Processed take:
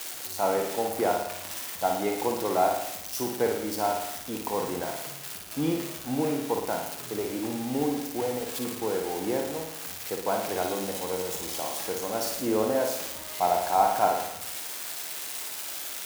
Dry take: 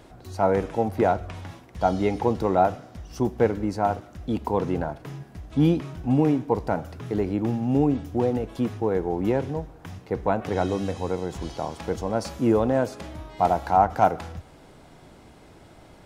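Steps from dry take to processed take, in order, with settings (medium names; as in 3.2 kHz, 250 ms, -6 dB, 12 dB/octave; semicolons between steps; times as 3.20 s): zero-crossing glitches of -18 dBFS; high-pass 100 Hz; tone controls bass -10 dB, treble -3 dB; flutter echo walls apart 9.6 m, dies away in 0.74 s; trim -4.5 dB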